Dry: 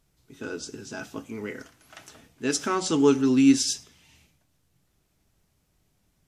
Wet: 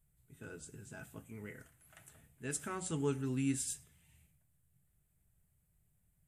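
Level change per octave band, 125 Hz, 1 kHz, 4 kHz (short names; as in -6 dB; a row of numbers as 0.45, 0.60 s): -4.0, -15.5, -21.0 dB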